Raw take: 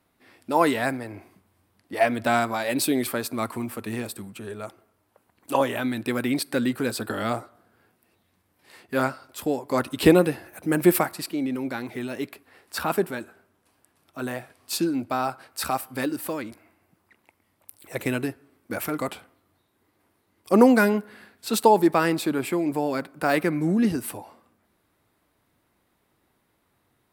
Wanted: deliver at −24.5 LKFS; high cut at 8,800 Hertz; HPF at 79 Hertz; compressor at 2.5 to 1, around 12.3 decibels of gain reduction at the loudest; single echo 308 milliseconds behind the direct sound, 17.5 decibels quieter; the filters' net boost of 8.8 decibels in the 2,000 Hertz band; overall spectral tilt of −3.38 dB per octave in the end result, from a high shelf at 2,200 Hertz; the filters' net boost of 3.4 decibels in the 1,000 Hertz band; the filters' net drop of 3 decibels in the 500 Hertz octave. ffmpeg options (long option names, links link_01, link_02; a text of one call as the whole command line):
ffmpeg -i in.wav -af "highpass=79,lowpass=8800,equalizer=frequency=500:width_type=o:gain=-5.5,equalizer=frequency=1000:width_type=o:gain=3,equalizer=frequency=2000:width_type=o:gain=8,highshelf=frequency=2200:gain=5.5,acompressor=threshold=-30dB:ratio=2.5,aecho=1:1:308:0.133,volume=7dB" out.wav